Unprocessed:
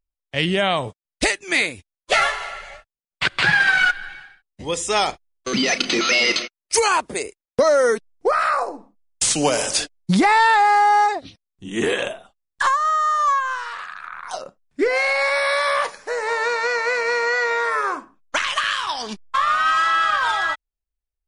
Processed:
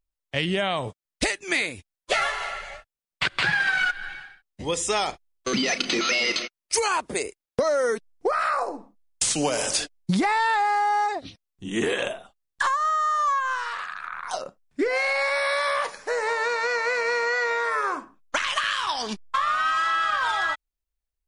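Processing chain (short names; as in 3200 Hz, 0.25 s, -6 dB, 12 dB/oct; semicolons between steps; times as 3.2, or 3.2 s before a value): compressor 3:1, threshold -22 dBFS, peak gain reduction 8 dB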